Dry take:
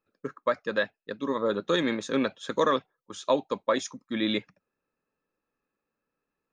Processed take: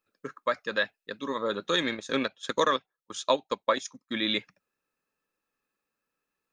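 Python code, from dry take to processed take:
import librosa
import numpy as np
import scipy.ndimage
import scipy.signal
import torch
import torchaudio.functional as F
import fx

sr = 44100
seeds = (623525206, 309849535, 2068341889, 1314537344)

y = fx.transient(x, sr, attack_db=3, sustain_db=-9, at=(1.84, 4.2))
y = fx.tilt_shelf(y, sr, db=-5.0, hz=1200.0)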